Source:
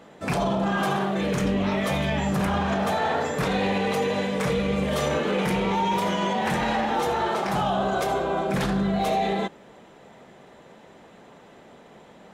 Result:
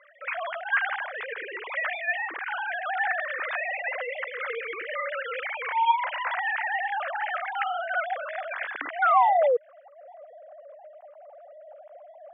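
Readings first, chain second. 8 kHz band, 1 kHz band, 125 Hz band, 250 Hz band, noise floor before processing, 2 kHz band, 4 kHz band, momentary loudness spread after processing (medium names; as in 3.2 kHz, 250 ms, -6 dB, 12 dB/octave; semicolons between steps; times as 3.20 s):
under -40 dB, -0.5 dB, under -40 dB, under -30 dB, -50 dBFS, +4.0 dB, -9.0 dB, 10 LU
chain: formants replaced by sine waves; band-pass sweep 1.8 kHz -> 650 Hz, 8.98–10.18 s; painted sound fall, 9.02–9.57 s, 460–1500 Hz -26 dBFS; trim +5.5 dB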